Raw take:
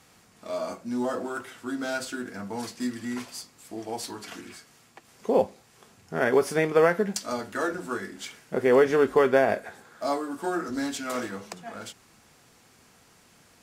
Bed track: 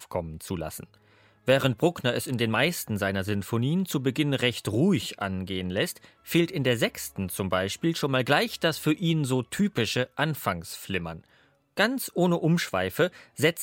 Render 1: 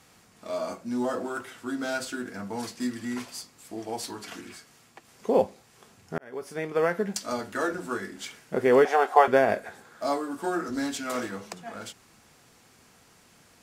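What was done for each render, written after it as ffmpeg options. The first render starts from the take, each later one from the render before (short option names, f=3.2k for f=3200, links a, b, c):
-filter_complex "[0:a]asettb=1/sr,asplit=3[a][b][c];[a]atrim=end=8.854[d];[b]atrim=start=8.85:end=9.28,asetpts=PTS-STARTPTS,afade=t=in:d=0.004:c=qsin,afade=t=out:st=0.426:d=0.004:c=qsin,highpass=f=750:t=q:w=9[e];[c]atrim=start=9.276[f];[d][e]acrossfade=d=0.004:c1=hsin:c2=qsin[g];[g][f]acrossfade=d=0.004:c1=qsin:c2=hsin,asplit=2[h][i];[h]atrim=end=6.18,asetpts=PTS-STARTPTS,afade=t=out:st=6.176:d=0.004:c=hsin[j];[i]atrim=start=6.18,asetpts=PTS-STARTPTS,afade=t=in:d=1.12[k];[j][k]concat=n=2:v=0:a=1"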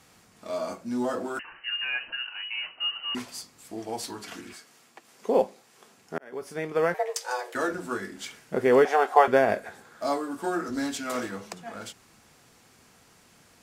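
-filter_complex "[0:a]asettb=1/sr,asplit=3[a][b][c];[a]atrim=end=1.394[d];[b]atrim=start=1.39:end=3.15,asetpts=PTS-STARTPTS,afade=t=in:d=0.004:c=qsin,afade=t=out:st=1.756:d=0.004:c=qsin,lowpass=f=2.6k:t=q:w=0.5098,lowpass=f=2.6k:t=q:w=0.6013,lowpass=f=2.6k:t=q:w=0.9,lowpass=f=2.6k:t=q:w=2.563,afreqshift=-3100[e];[c]atrim=start=3.146[f];[d][e]acrossfade=d=0.004:c1=hsin:c2=qsin[g];[g][f]acrossfade=d=0.004:c1=qsin:c2=hsin,asettb=1/sr,asplit=3[h][i][j];[h]atrim=end=4.534[k];[i]atrim=start=4.53:end=6.33,asetpts=PTS-STARTPTS,afade=t=in:d=0.004:c=qsin,afade=t=out:st=1.796:d=0.004:c=qsin,highpass=220[l];[j]atrim=start=6.326[m];[k][l]acrossfade=d=0.004:c1=hsin:c2=qsin[n];[n][m]acrossfade=d=0.004:c1=qsin:c2=hsin,asettb=1/sr,asplit=3[o][p][q];[o]atrim=end=6.944[r];[p]atrim=start=6.94:end=7.55,asetpts=PTS-STARTPTS,afade=t=in:d=0.004:c=qsin,afade=t=out:st=0.606:d=0.004:c=qsin,afreqshift=260[s];[q]atrim=start=7.546[t];[r][s]acrossfade=d=0.004:c1=hsin:c2=qsin[u];[u][t]acrossfade=d=0.004:c1=qsin:c2=hsin"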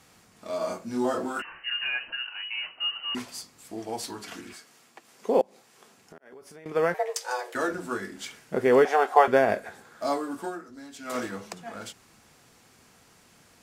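-filter_complex "[0:a]asettb=1/sr,asplit=3[a][b][c];[a]atrim=end=0.584[d];[b]atrim=start=0.58:end=1.9,asetpts=PTS-STARTPTS,afade=t=in:d=0.004:c=qsin,afade=t=out:st=1.316:d=0.004:c=qsin,asplit=2[e][f];[f]adelay=27,volume=-2dB[g];[e][g]amix=inputs=2:normalize=0,atrim=end_sample=58212[h];[c]atrim=start=1.896[i];[d][h]acrossfade=d=0.004:c1=hsin:c2=qsin[j];[j][i]acrossfade=d=0.004:c1=qsin:c2=hsin,asettb=1/sr,asplit=3[k][l][m];[k]atrim=end=5.414[n];[l]atrim=start=5.41:end=6.66,asetpts=PTS-STARTPTS,afade=t=in:d=0.004:c=qsin,afade=t=out:st=1.246:d=0.004:c=qsin,acompressor=threshold=-45dB:ratio=6:attack=3.2:release=140:knee=1:detection=peak[o];[m]atrim=start=6.656[p];[n][o]acrossfade=d=0.004:c1=hsin:c2=qsin[q];[q][p]acrossfade=d=0.004:c1=qsin:c2=hsin,asplit=3[r][s][t];[r]atrim=end=10.7,asetpts=PTS-STARTPTS,afade=t=out:st=10.39:d=0.31:c=qua:silence=0.177828[u];[s]atrim=start=10.7:end=10.85,asetpts=PTS-STARTPTS,volume=-15dB[v];[t]atrim=start=10.85,asetpts=PTS-STARTPTS,afade=t=in:d=0.31:c=qua:silence=0.177828[w];[u][v][w]concat=n=3:v=0:a=1"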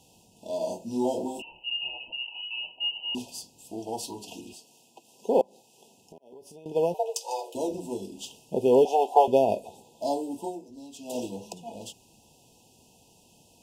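-af "afftfilt=real='re*(1-between(b*sr/4096,1000,2500))':imag='im*(1-between(b*sr/4096,1000,2500))':win_size=4096:overlap=0.75,equalizer=f=4.2k:w=5.5:g=-4"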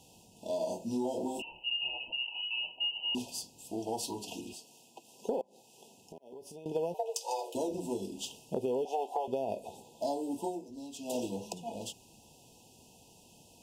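-af "alimiter=limit=-15.5dB:level=0:latency=1:release=294,acompressor=threshold=-30dB:ratio=6"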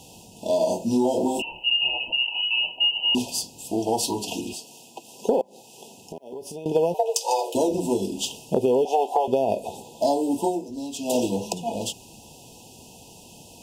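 -af "volume=12dB"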